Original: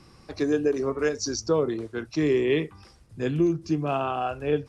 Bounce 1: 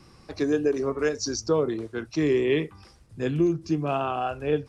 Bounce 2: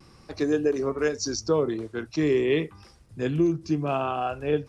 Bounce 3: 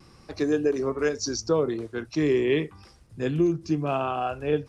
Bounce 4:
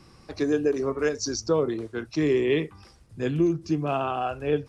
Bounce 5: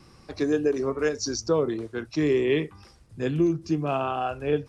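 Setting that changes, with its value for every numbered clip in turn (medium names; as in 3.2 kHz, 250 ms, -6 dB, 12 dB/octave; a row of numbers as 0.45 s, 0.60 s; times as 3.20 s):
vibrato, rate: 3.8 Hz, 0.46 Hz, 0.69 Hz, 14 Hz, 2.2 Hz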